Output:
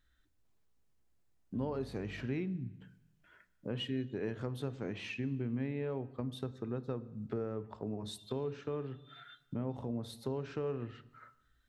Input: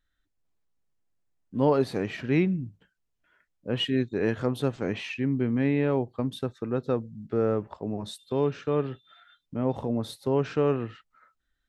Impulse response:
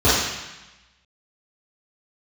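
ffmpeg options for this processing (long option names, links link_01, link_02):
-filter_complex "[0:a]acompressor=threshold=-45dB:ratio=3,asettb=1/sr,asplit=3[link_01][link_02][link_03];[link_01]atrim=end=1.574[link_04];[link_02]atrim=start=1.57:end=2.25,asetpts=PTS-STARTPTS,afade=type=in:duration=0.004:curve=qsin,afade=type=out:start_time=0.676:duration=0.004:curve=qsin,aeval=exprs='val(0)+0.00178*(sin(2*PI*50*n/s)+sin(2*PI*2*50*n/s)/2+sin(2*PI*3*50*n/s)/3+sin(2*PI*4*50*n/s)/4+sin(2*PI*5*50*n/s)/5)':channel_layout=same[link_05];[link_03]atrim=start=2.246[link_06];[link_04][link_05]acrossfade=duration=0.004:curve1=hsin:curve2=qsin[link_07];[link_07][link_06]acrossfade=duration=0.004:curve1=qsin:curve2=hsin,asplit=2[link_08][link_09];[1:a]atrim=start_sample=2205,lowshelf=frequency=240:gain=10[link_10];[link_09][link_10]afir=irnorm=-1:irlink=0,volume=-39dB[link_11];[link_08][link_11]amix=inputs=2:normalize=0,volume=3dB"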